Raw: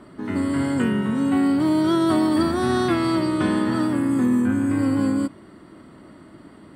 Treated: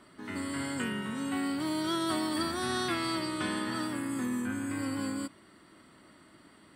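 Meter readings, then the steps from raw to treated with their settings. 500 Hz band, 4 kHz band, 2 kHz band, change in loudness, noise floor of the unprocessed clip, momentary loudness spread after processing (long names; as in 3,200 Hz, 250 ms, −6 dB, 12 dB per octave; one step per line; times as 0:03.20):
−12.5 dB, −2.0 dB, −5.0 dB, −12.0 dB, −47 dBFS, 5 LU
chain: tilt shelving filter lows −7 dB, about 1,200 Hz
level −7.5 dB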